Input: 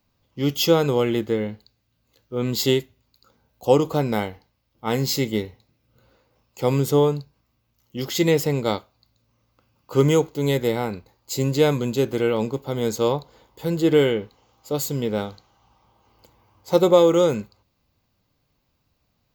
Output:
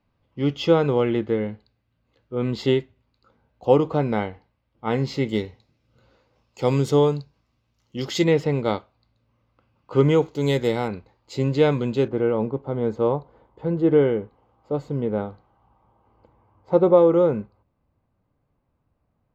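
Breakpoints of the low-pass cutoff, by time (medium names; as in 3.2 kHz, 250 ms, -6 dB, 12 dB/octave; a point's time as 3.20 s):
2.5 kHz
from 5.29 s 6 kHz
from 8.24 s 2.8 kHz
from 10.22 s 6.7 kHz
from 10.88 s 3.1 kHz
from 12.08 s 1.3 kHz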